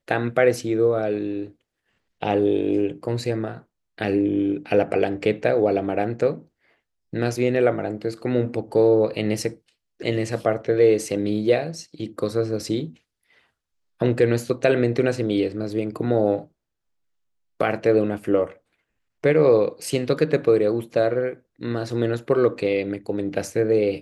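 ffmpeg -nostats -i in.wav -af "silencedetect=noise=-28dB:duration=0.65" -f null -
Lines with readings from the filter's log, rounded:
silence_start: 1.45
silence_end: 2.23 | silence_duration: 0.77
silence_start: 6.37
silence_end: 7.14 | silence_duration: 0.76
silence_start: 12.86
silence_end: 14.01 | silence_duration: 1.15
silence_start: 16.39
silence_end: 17.61 | silence_duration: 1.21
silence_start: 18.45
silence_end: 19.24 | silence_duration: 0.78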